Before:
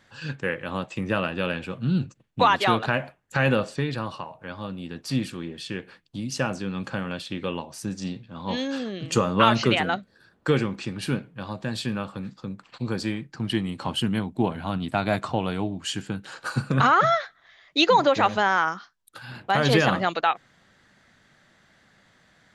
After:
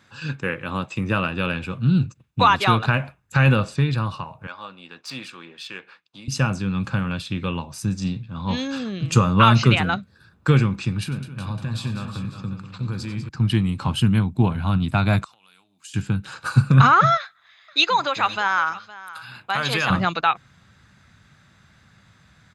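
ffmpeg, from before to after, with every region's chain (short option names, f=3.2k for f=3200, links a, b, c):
-filter_complex "[0:a]asettb=1/sr,asplit=3[a][b][c];[a]atrim=end=4.474[d];[b]atrim=start=4.47:end=6.28,asetpts=PTS-STARTPTS,afade=t=in:d=0.004:c=qsin,afade=t=out:st=1.806:d=0.004:c=qsin,highpass=580,adynamicsmooth=sensitivity=4:basefreq=5.9k[e];[c]atrim=start=6.276[f];[d][e]acrossfade=d=0.004:c1=hsin:c2=qsin[g];[g][f]acrossfade=d=0.004:c1=qsin:c2=hsin,asettb=1/sr,asplit=3[h][i][j];[h]atrim=end=11.034[k];[i]atrim=start=11.03:end=13.29,asetpts=PTS-STARTPTS,afade=t=in:d=0.004:c=qsin,afade=t=out:st=2.256:d=0.004:c=qsin,acompressor=threshold=-34dB:ratio=2.5:attack=3.2:release=140:knee=1:detection=peak,aecho=1:1:86|94|196|354|371|547:0.126|0.178|0.282|0.224|0.282|0.15,atrim=end_sample=99666[l];[j]atrim=start=13.286[m];[k][l]acrossfade=d=0.004:c1=hsin:c2=qsin[n];[n][m]acrossfade=d=0.004:c1=qsin:c2=hsin,asettb=1/sr,asplit=3[o][p][q];[o]atrim=end=15.244[r];[p]atrim=start=15.24:end=15.94,asetpts=PTS-STARTPTS,afade=t=in:d=0.004:c=qsin,afade=t=out:st=0.696:d=0.004:c=qsin,highpass=150,acompressor=threshold=-35dB:ratio=16:attack=3.2:release=140:knee=1:detection=peak,aderivative[s];[q]atrim=start=15.936[t];[r][s]acrossfade=d=0.004:c1=hsin:c2=qsin[u];[u][t]acrossfade=d=0.004:c1=qsin:c2=hsin,asettb=1/sr,asplit=3[v][w][x];[v]atrim=end=17.174[y];[w]atrim=start=17.17:end=19.9,asetpts=PTS-STARTPTS,afade=t=in:d=0.004:c=qsin,afade=t=out:st=2.726:d=0.004:c=qsin,highpass=f=950:p=1,bandreject=f=5.7k:w=6,aecho=1:1:513:0.126,atrim=end_sample=120393[z];[x]atrim=start=19.896[aa];[y][z]acrossfade=d=0.004:c1=hsin:c2=qsin[ab];[ab][aa]acrossfade=d=0.004:c1=qsin:c2=hsin,highpass=66,aecho=1:1:0.8:0.35,asubboost=boost=4.5:cutoff=130,volume=2.5dB"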